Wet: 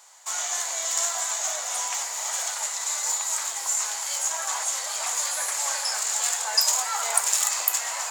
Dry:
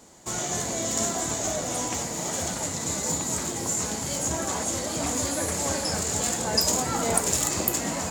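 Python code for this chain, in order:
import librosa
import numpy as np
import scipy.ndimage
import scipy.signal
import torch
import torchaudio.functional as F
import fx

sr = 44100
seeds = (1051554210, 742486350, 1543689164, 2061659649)

y = scipy.signal.sosfilt(scipy.signal.butter(4, 840.0, 'highpass', fs=sr, output='sos'), x)
y = y * 10.0 ** (2.5 / 20.0)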